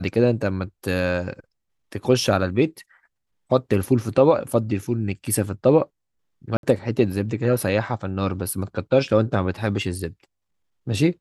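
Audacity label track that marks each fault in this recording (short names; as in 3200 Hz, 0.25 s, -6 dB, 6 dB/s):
6.570000	6.630000	gap 62 ms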